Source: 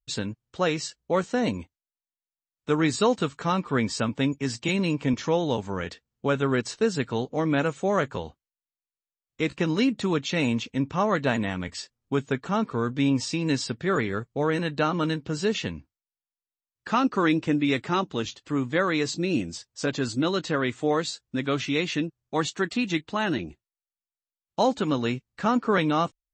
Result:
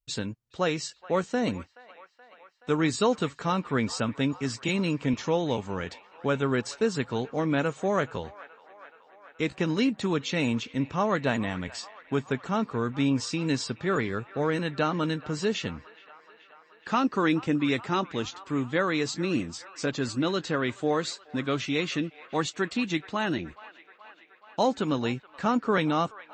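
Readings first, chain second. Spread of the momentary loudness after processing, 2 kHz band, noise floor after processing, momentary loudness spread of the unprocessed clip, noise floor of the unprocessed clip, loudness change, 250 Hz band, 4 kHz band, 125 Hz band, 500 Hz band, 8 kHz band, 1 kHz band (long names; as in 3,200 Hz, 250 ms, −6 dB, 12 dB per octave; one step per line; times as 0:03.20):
8 LU, −2.0 dB, −58 dBFS, 8 LU, below −85 dBFS, −2.0 dB, −2.0 dB, −2.0 dB, −2.0 dB, −2.0 dB, −2.0 dB, −2.0 dB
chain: delay with a band-pass on its return 426 ms, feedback 71%, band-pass 1,400 Hz, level −17 dB
level −2 dB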